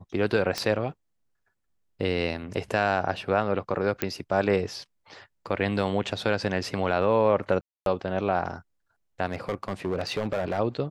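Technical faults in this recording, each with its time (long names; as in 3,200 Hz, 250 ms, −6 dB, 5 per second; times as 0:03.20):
0:00.58: click −12 dBFS
0:04.02: click −10 dBFS
0:07.61–0:07.86: drop-out 252 ms
0:09.27–0:10.60: clipping −22.5 dBFS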